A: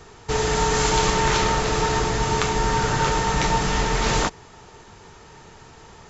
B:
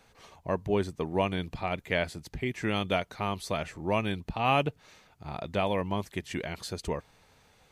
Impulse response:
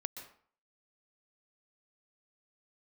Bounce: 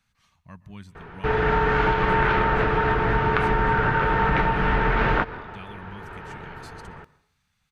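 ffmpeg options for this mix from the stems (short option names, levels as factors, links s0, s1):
-filter_complex "[0:a]lowpass=f=2600:w=0.5412,lowpass=f=2600:w=1.3066,equalizer=f=1500:w=4.5:g=8,dynaudnorm=f=160:g=9:m=1.68,adelay=950,volume=1.19,asplit=2[s0][s1];[s1]volume=0.299[s2];[1:a]firequalizer=gain_entry='entry(190,0);entry(390,-21);entry(1200,-2)':delay=0.05:min_phase=1,volume=0.282,asplit=3[s3][s4][s5];[s4]volume=0.473[s6];[s5]apad=whole_len=310639[s7];[s0][s7]sidechaincompress=threshold=0.00891:ratio=8:attack=16:release=472[s8];[2:a]atrim=start_sample=2205[s9];[s2][s6]amix=inputs=2:normalize=0[s10];[s10][s9]afir=irnorm=-1:irlink=0[s11];[s8][s3][s11]amix=inputs=3:normalize=0,acompressor=threshold=0.141:ratio=6"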